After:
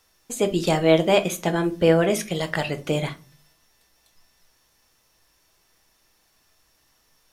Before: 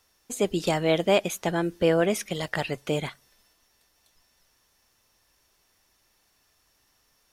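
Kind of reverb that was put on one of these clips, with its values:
rectangular room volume 190 cubic metres, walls furnished, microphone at 0.64 metres
level +2.5 dB

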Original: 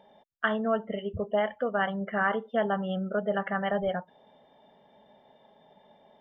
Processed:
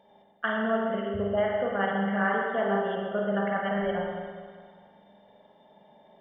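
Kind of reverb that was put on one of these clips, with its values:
spring reverb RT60 1.8 s, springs 40/50 ms, chirp 65 ms, DRR −2 dB
level −3 dB

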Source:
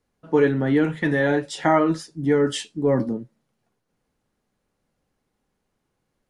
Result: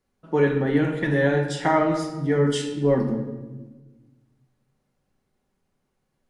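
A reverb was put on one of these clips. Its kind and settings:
rectangular room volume 800 cubic metres, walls mixed, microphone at 1.1 metres
level −2.5 dB

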